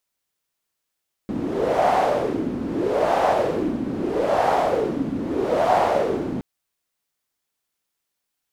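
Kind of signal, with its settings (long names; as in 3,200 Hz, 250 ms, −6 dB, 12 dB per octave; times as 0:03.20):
wind from filtered noise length 5.12 s, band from 250 Hz, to 740 Hz, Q 4.1, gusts 4, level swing 7 dB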